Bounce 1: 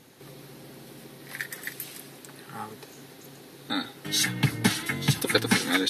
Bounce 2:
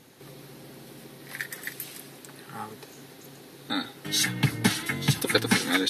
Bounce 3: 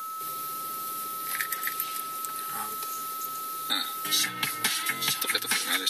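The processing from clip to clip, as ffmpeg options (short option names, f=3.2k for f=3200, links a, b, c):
-af anull
-filter_complex "[0:a]aeval=exprs='val(0)+0.0158*sin(2*PI*1300*n/s)':c=same,aemphasis=mode=production:type=riaa,acrossover=split=400|1000|4400[a][b][c][d];[a]acompressor=threshold=-45dB:ratio=4[e];[b]acompressor=threshold=-45dB:ratio=4[f];[c]acompressor=threshold=-28dB:ratio=4[g];[d]acompressor=threshold=-34dB:ratio=4[h];[e][f][g][h]amix=inputs=4:normalize=0,volume=1.5dB"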